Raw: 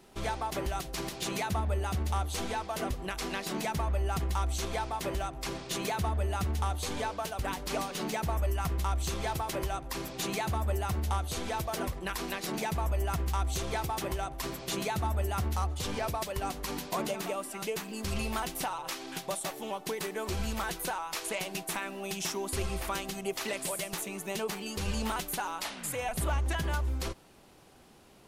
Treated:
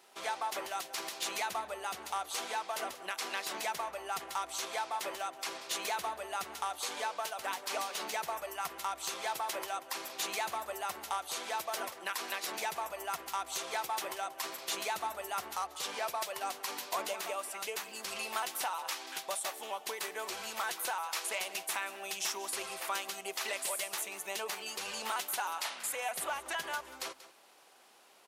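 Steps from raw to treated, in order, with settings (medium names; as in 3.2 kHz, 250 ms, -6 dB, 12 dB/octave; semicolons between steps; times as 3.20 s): high-pass 660 Hz 12 dB/octave; on a send: delay 185 ms -16 dB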